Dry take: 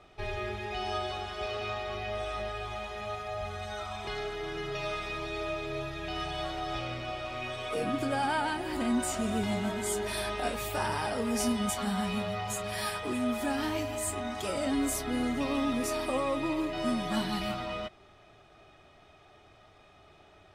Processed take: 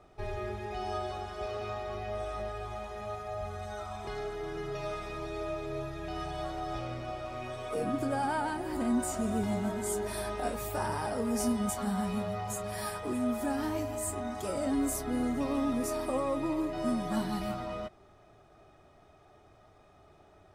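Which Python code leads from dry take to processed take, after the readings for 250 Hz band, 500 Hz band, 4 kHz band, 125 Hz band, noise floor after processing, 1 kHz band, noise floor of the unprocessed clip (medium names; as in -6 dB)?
0.0 dB, -0.5 dB, -9.0 dB, 0.0 dB, -60 dBFS, -2.0 dB, -58 dBFS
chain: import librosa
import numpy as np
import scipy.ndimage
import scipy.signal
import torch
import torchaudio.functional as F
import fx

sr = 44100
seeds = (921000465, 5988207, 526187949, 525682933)

y = fx.peak_eq(x, sr, hz=3000.0, db=-10.5, octaves=1.6)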